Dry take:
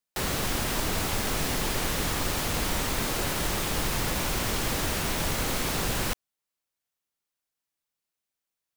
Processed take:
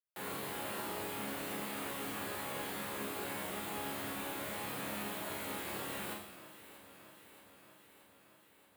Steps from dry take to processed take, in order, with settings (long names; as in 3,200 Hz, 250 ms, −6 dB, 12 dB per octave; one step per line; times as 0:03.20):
high-pass filter 180 Hz 12 dB per octave
parametric band 5,700 Hz −13.5 dB 0.76 octaves
resonators tuned to a chord C#2 sus4, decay 0.72 s
on a send: delay that swaps between a low-pass and a high-pass 314 ms, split 1,700 Hz, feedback 82%, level −13.5 dB
on the sum: level +5.5 dB